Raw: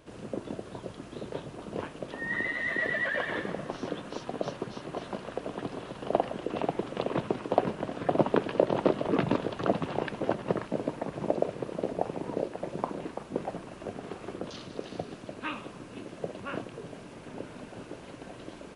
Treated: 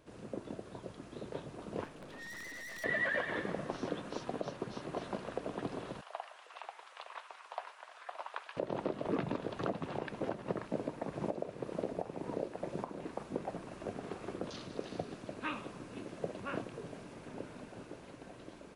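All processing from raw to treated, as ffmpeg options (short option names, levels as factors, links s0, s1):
-filter_complex "[0:a]asettb=1/sr,asplit=3[s0][s1][s2];[s0]atrim=end=1.844[s3];[s1]atrim=start=1.84:end=2.84,asetpts=PTS-STARTPTS,afade=t=in:d=0.004:c=qsin,afade=t=out:st=0.996:d=0.004:c=qsin,aeval=exprs='(mod(12.6*val(0)+1,2)-1)/12.6':c=same,aeval=exprs='(tanh(126*val(0)+0.35)-tanh(0.35))/126':c=same[s4];[s2]atrim=start=2.836[s5];[s3][s4]acrossfade=d=0.004:c1=hsin:c2=qsin[s6];[s6][s5]acrossfade=d=0.004:c1=qsin:c2=hsin,asettb=1/sr,asplit=3[s7][s8][s9];[s7]atrim=end=6.014[s10];[s8]atrim=start=6.01:end=8.57,asetpts=PTS-STARTPTS,afade=t=in:d=0.004:c=qsin,afade=t=out:st=2.556:d=0.004:c=qsin,highpass=f=900:w=0.5412,highpass=f=900:w=1.3066,flanger=delay=2.1:depth=8:regen=82:speed=1.6:shape=triangular[s11];[s9]atrim=start=8.566[s12];[s10][s11]acrossfade=d=0.004:c1=hsin:c2=qsin[s13];[s13][s12]acrossfade=d=0.004:c1=qsin:c2=hsin,equalizer=f=3000:w=5.3:g=-3,dynaudnorm=f=370:g=9:m=1.5,alimiter=limit=0.168:level=0:latency=1:release=358,volume=0.473"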